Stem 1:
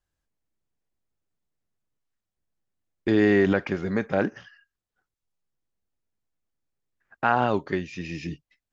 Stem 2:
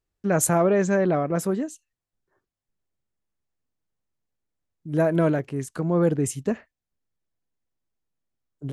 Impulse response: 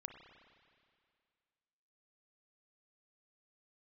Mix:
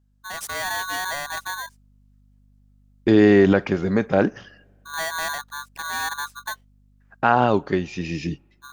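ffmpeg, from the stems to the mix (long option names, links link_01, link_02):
-filter_complex "[0:a]equalizer=frequency=1900:width=1.5:gain=-4,aeval=exprs='val(0)+0.000794*(sin(2*PI*50*n/s)+sin(2*PI*2*50*n/s)/2+sin(2*PI*3*50*n/s)/3+sin(2*PI*4*50*n/s)/4+sin(2*PI*5*50*n/s)/5)':channel_layout=same,volume=-0.5dB,asplit=2[link_01][link_02];[link_02]volume=-21.5dB[link_03];[1:a]afwtdn=0.0316,asoftclip=type=tanh:threshold=-16dB,aeval=exprs='val(0)*sgn(sin(2*PI*1300*n/s))':channel_layout=same,volume=-12dB[link_04];[2:a]atrim=start_sample=2205[link_05];[link_03][link_05]afir=irnorm=-1:irlink=0[link_06];[link_01][link_04][link_06]amix=inputs=3:normalize=0,dynaudnorm=framelen=140:gausssize=7:maxgain=7dB"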